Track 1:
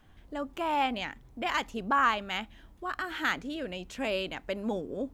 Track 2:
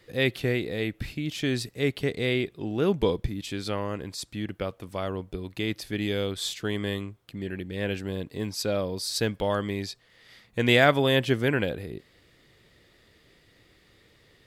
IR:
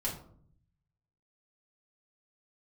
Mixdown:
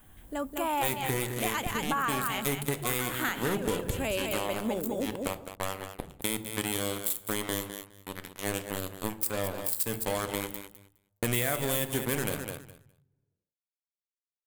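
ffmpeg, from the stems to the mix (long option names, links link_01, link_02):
-filter_complex "[0:a]volume=2dB,asplit=2[link_01][link_02];[link_02]volume=-4.5dB[link_03];[1:a]acrusher=bits=3:mix=0:aa=0.5,adelay=650,volume=-1dB,asplit=3[link_04][link_05][link_06];[link_05]volume=-11dB[link_07];[link_06]volume=-11dB[link_08];[2:a]atrim=start_sample=2205[link_09];[link_07][link_09]afir=irnorm=-1:irlink=0[link_10];[link_03][link_08]amix=inputs=2:normalize=0,aecho=0:1:207|414|621:1|0.16|0.0256[link_11];[link_01][link_04][link_10][link_11]amix=inputs=4:normalize=0,aexciter=amount=4.8:drive=8.4:freq=7600,acompressor=threshold=-26dB:ratio=6"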